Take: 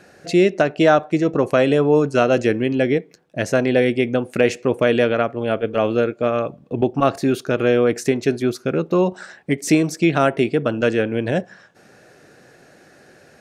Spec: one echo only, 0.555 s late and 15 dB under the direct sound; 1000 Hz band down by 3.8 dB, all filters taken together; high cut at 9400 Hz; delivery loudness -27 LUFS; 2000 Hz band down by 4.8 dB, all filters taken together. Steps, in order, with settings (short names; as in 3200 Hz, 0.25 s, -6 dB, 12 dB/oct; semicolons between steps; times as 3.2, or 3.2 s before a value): LPF 9400 Hz; bell 1000 Hz -4.5 dB; bell 2000 Hz -5 dB; echo 0.555 s -15 dB; gain -7 dB